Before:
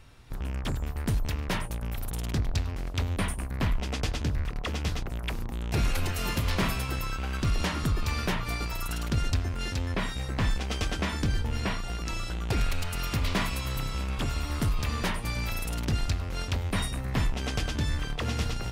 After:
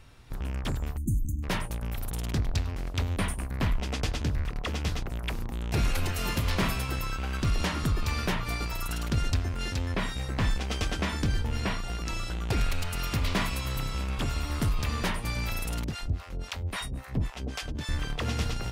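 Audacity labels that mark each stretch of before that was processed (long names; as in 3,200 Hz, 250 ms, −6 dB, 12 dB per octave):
0.970000	1.430000	time-frequency box erased 360–6,100 Hz
15.840000	17.890000	two-band tremolo in antiphase 3.7 Hz, depth 100%, crossover 600 Hz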